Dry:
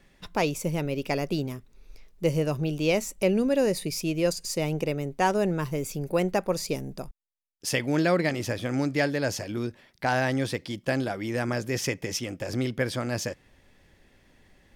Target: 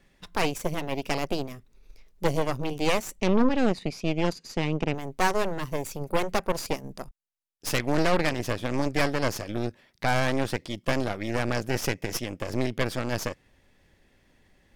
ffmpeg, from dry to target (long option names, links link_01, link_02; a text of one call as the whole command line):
ffmpeg -i in.wav -filter_complex "[0:a]asettb=1/sr,asplit=3[link_01][link_02][link_03];[link_01]atrim=end=3.204[link_04];[link_02]atrim=start=3.2:end=4.94,asetpts=PTS-STARTPTS,afade=type=in:duration=0.004:curve=qsin,afade=type=out:start_time=1.736:duration=0.004:curve=qsin,highpass=130,equalizer=frequency=240:width_type=q:width=4:gain=8,equalizer=frequency=590:width_type=q:width=4:gain=-10,equalizer=frequency=5300:width_type=q:width=4:gain=-6,lowpass=frequency=5600:width=0.5412,lowpass=frequency=5600:width=1.3066[link_05];[link_03]atrim=start=4.936[link_06];[link_04][link_05]acrossfade=duration=0.004:curve1=hsin:curve2=qsin[link_07];[link_07][link_06]acrossfade=duration=0.004:curve1=qsin:curve2=hsin,aeval=exprs='0.282*(cos(1*acos(clip(val(0)/0.282,-1,1)))-cos(1*PI/2))+0.0891*(cos(6*acos(clip(val(0)/0.282,-1,1)))-cos(6*PI/2))':channel_layout=same,volume=-3dB" out.wav